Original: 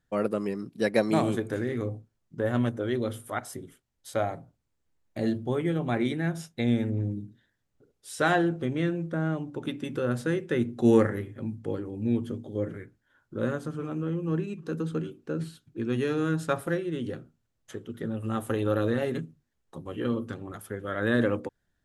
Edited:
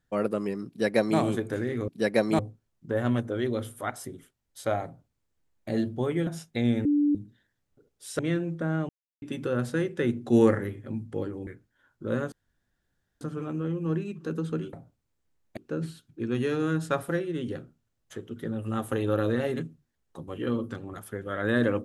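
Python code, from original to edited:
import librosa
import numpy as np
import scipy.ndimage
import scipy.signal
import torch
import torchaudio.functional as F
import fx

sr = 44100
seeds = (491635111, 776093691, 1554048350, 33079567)

y = fx.edit(x, sr, fx.duplicate(start_s=0.68, length_s=0.51, to_s=1.88),
    fx.duplicate(start_s=4.34, length_s=0.84, to_s=15.15),
    fx.cut(start_s=5.76, length_s=0.54),
    fx.bleep(start_s=6.88, length_s=0.3, hz=292.0, db=-19.5),
    fx.cut(start_s=8.22, length_s=0.49),
    fx.silence(start_s=9.41, length_s=0.33),
    fx.cut(start_s=11.99, length_s=0.79),
    fx.insert_room_tone(at_s=13.63, length_s=0.89), tone=tone)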